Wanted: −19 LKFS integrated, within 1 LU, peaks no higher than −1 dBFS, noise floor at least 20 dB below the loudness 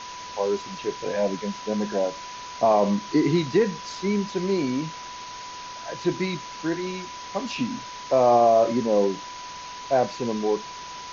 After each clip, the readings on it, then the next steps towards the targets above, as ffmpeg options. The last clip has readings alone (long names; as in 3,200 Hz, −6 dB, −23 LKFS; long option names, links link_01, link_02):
interfering tone 990 Hz; level of the tone −37 dBFS; background noise floor −38 dBFS; target noise floor −45 dBFS; integrated loudness −24.5 LKFS; sample peak −9.0 dBFS; target loudness −19.0 LKFS
→ -af "bandreject=frequency=990:width=30"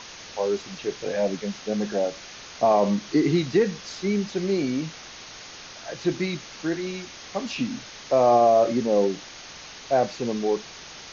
interfering tone none found; background noise floor −42 dBFS; target noise floor −45 dBFS
→ -af "afftdn=noise_reduction=6:noise_floor=-42"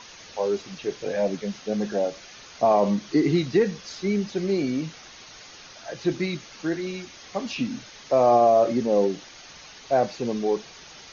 background noise floor −46 dBFS; integrated loudness −24.5 LKFS; sample peak −9.0 dBFS; target loudness −19.0 LKFS
→ -af "volume=5.5dB"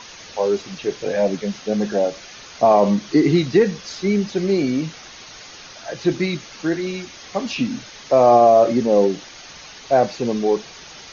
integrated loudness −19.0 LKFS; sample peak −3.5 dBFS; background noise floor −41 dBFS